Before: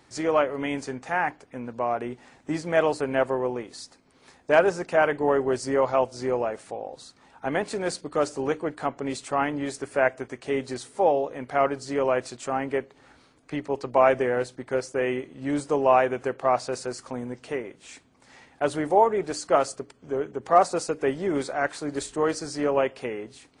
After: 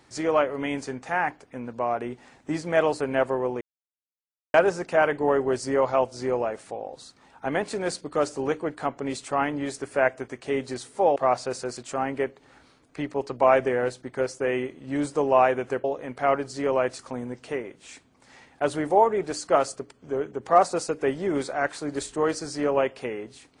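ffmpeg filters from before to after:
-filter_complex "[0:a]asplit=7[a][b][c][d][e][f][g];[a]atrim=end=3.61,asetpts=PTS-STARTPTS,afade=t=out:st=3.606:d=0.004:c=hsin[h];[b]atrim=start=3.61:end=4.54,asetpts=PTS-STARTPTS,volume=0[i];[c]atrim=start=4.54:end=11.162,asetpts=PTS-STARTPTS,afade=t=in:d=0.004:c=hsin[j];[d]atrim=start=16.378:end=16.992[k];[e]atrim=start=12.308:end=16.382[l];[f]atrim=start=11.158:end=12.312[m];[g]atrim=start=16.988[n];[h][i][j]concat=n=3:v=0:a=1[o];[o][k]acrossfade=d=0.004:c1=hsin:c2=hsin[p];[p][l]acrossfade=d=0.004:c1=hsin:c2=hsin[q];[q][m]acrossfade=d=0.004:c1=hsin:c2=hsin[r];[r][n]acrossfade=d=0.004:c1=hsin:c2=hsin"

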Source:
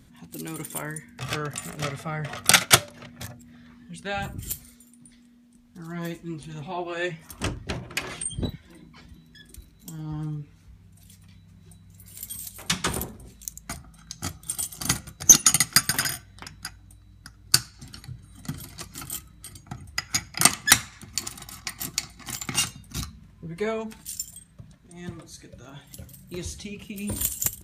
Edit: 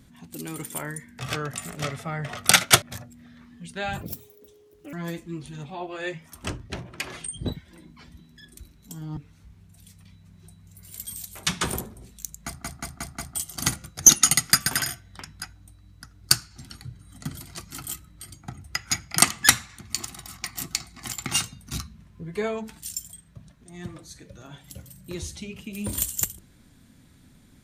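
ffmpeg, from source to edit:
-filter_complex "[0:a]asplit=12[a][b][c][d][e][f][g][h][i][j][k][l];[a]atrim=end=2.822[m];[b]atrim=start=3.108:end=4.304[n];[c]atrim=start=4.3:end=5.9,asetpts=PTS-STARTPTS,asetrate=76734,aresample=44100[o];[d]atrim=start=5.896:end=6.612[p];[e]atrim=start=6.608:end=8.432,asetpts=PTS-STARTPTS,volume=-3dB[q];[f]atrim=start=8.428:end=10.142[r];[g]atrim=start=10.398:end=13.862[s];[h]atrim=start=13.678:end=13.862[t];[i]atrim=start=13.678:end=13.862[u];[j]atrim=start=13.678:end=13.862[v];[k]atrim=start=13.678:end=13.862[w];[l]atrim=start=14.578[x];[m][n]acrossfade=d=0.004:c1=hsin:c2=hsin[y];[y][o]acrossfade=d=0.004:c1=hsin:c2=hsin[z];[z][p]acrossfade=d=0.004:c1=hsin:c2=hsin[aa];[aa][q]acrossfade=d=0.004:c1=hsin:c2=hsin[ab];[ab][r]acrossfade=d=0.004:c1=hsin:c2=hsin[ac];[ac][s]acrossfade=d=0.004:c1=hsin:c2=hsin[ad];[ad][t]acrossfade=d=0.004:c1=hsin:c2=hsin[ae];[ae][u]acrossfade=d=0.004:c1=hsin:c2=hsin[af];[af][v]acrossfade=d=0.004:c1=hsin:c2=hsin[ag];[ag][w]acrossfade=d=0.004:c1=hsin:c2=hsin[ah];[ah][x]acrossfade=d=0.004:c1=hsin:c2=hsin"

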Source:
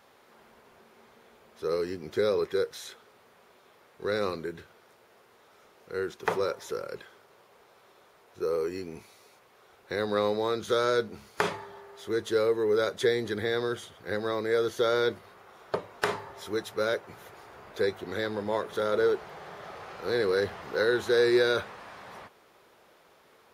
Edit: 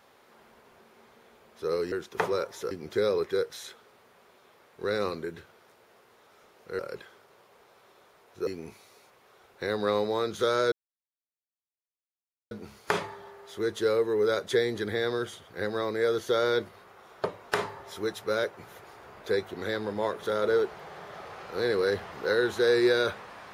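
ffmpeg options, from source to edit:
-filter_complex "[0:a]asplit=6[a][b][c][d][e][f];[a]atrim=end=1.922[g];[b]atrim=start=5.998:end=6.792[h];[c]atrim=start=1.918:end=6.002[i];[d]atrim=start=6.788:end=8.472[j];[e]atrim=start=8.758:end=11.01,asetpts=PTS-STARTPTS,afade=t=out:st=2.248:d=0.004:c=hsin,apad=pad_dur=1.79[k];[f]atrim=start=11.01,asetpts=PTS-STARTPTS,afade=t=in:d=0.004:c=hsin[l];[g][h]acrossfade=d=0.004:c1=hsin:c2=hsin[m];[m][i]acrossfade=d=0.004:c1=hsin:c2=hsin[n];[n][j]acrossfade=d=0.004:c1=hsin:c2=hsin[o];[k][l]concat=n=2:v=0:a=1[p];[o][p]acrossfade=d=0.004:c1=hsin:c2=hsin"

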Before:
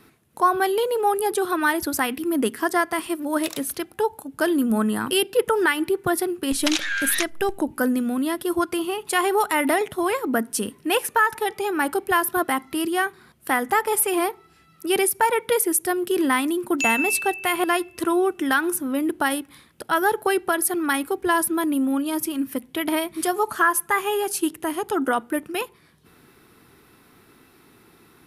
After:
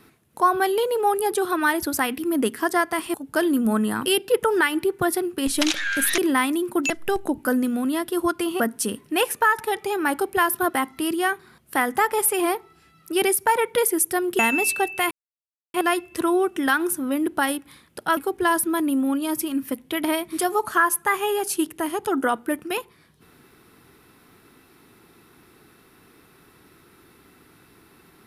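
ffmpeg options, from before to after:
-filter_complex "[0:a]asplit=8[a][b][c][d][e][f][g][h];[a]atrim=end=3.142[i];[b]atrim=start=4.188:end=7.232[j];[c]atrim=start=16.128:end=16.852[k];[d]atrim=start=7.228:end=8.932[l];[e]atrim=start=10.338:end=16.132[m];[f]atrim=start=16.848:end=17.57,asetpts=PTS-STARTPTS,afade=t=out:st=0.718:d=0.004:c=hsin,apad=pad_dur=0.63[n];[g]atrim=start=17.57:end=20.002,asetpts=PTS-STARTPTS,afade=t=in:d=0.004:c=hsin[o];[h]atrim=start=21.008[p];[i][j]acrossfade=d=0.004:c1=hsin:c2=hsin[q];[q][k]acrossfade=d=0.004:c1=hsin:c2=hsin[r];[r][l]acrossfade=d=0.004:c1=hsin:c2=hsin[s];[s][m]acrossfade=d=0.004:c1=hsin:c2=hsin[t];[n][o]concat=n=2:v=0:a=1[u];[t][u]acrossfade=d=0.004:c1=hsin:c2=hsin[v];[v][p]acrossfade=d=0.004:c1=hsin:c2=hsin"

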